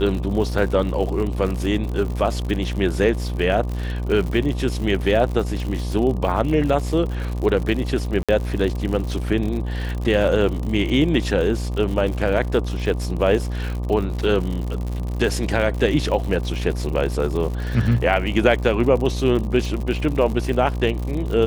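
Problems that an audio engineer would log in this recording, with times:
buzz 60 Hz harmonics 20 -25 dBFS
crackle 95/s -27 dBFS
8.23–8.29 gap 56 ms

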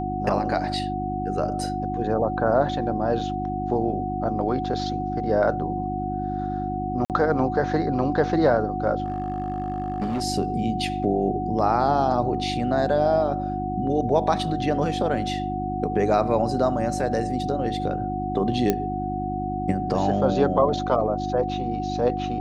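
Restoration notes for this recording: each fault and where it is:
hum 50 Hz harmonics 7 -30 dBFS
tone 740 Hz -28 dBFS
7.05–7.1 gap 48 ms
9.04–10.23 clipped -22 dBFS
18.7 pop -7 dBFS

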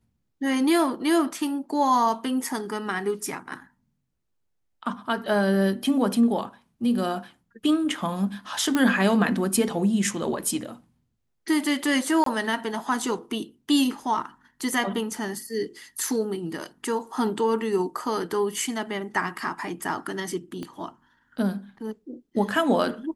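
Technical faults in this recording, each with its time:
8.75 pop -10 dBFS
12.24–12.26 gap 23 ms
20.63 pop -22 dBFS

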